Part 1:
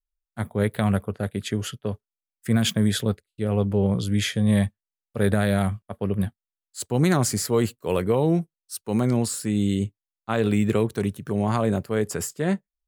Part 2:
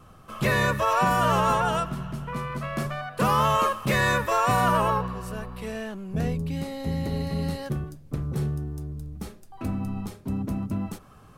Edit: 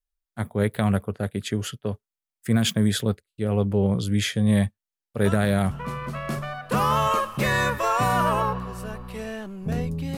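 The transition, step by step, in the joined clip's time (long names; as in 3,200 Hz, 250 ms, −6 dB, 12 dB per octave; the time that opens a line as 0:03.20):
part 1
0:05.25: mix in part 2 from 0:01.73 0.46 s −8 dB
0:05.71: continue with part 2 from 0:02.19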